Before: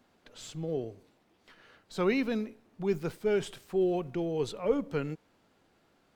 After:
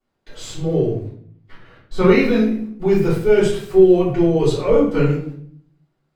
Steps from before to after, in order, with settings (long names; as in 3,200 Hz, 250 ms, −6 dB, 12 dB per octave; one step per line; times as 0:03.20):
noise gate −57 dBFS, range −21 dB
0:00.86–0:02.02: bass and treble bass +7 dB, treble −8 dB
rectangular room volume 79 cubic metres, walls mixed, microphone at 3.4 metres